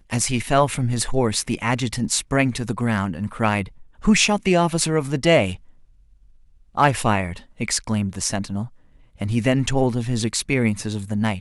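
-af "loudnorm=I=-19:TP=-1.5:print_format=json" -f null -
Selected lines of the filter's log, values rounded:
"input_i" : "-21.7",
"input_tp" : "-3.3",
"input_lra" : "2.9",
"input_thresh" : "-32.2",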